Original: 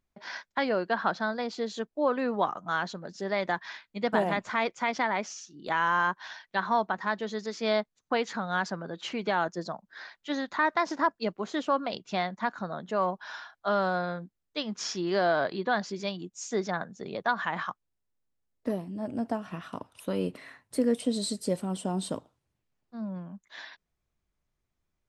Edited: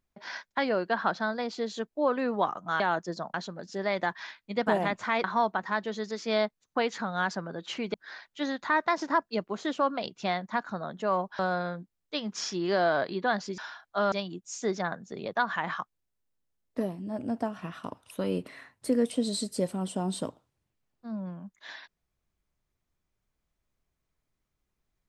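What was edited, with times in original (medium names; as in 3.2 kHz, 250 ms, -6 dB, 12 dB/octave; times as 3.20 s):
4.70–6.59 s: delete
9.29–9.83 s: move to 2.80 s
13.28–13.82 s: move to 16.01 s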